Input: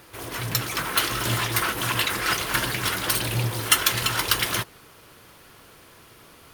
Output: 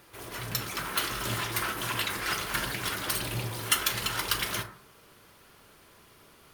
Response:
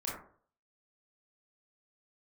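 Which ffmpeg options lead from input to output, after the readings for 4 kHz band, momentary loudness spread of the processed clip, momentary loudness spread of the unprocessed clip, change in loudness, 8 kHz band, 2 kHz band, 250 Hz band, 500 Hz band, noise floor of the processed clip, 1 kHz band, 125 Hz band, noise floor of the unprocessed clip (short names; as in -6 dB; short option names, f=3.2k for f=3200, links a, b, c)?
-6.5 dB, 7 LU, 7 LU, -6.5 dB, -6.5 dB, -6.5 dB, -6.5 dB, -6.0 dB, -57 dBFS, -6.0 dB, -8.5 dB, -51 dBFS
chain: -filter_complex "[0:a]asplit=2[a][b];[1:a]atrim=start_sample=2205,adelay=5[c];[b][c]afir=irnorm=-1:irlink=0,volume=-10dB[d];[a][d]amix=inputs=2:normalize=0,volume=-7dB"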